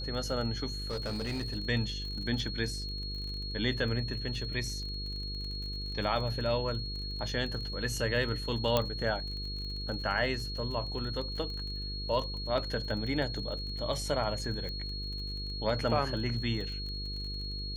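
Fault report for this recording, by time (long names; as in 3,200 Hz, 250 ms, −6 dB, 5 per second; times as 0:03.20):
mains buzz 50 Hz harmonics 10 −39 dBFS
surface crackle 29 per second −39 dBFS
whistle 4,300 Hz −39 dBFS
0:00.72–0:01.56: clipping −30.5 dBFS
0:08.77: click −12 dBFS
0:14.69: click −27 dBFS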